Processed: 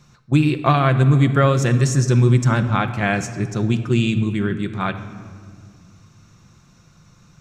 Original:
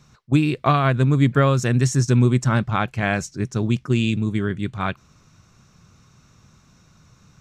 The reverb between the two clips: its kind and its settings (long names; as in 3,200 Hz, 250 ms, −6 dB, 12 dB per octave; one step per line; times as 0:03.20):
rectangular room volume 3,300 cubic metres, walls mixed, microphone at 0.85 metres
level +1 dB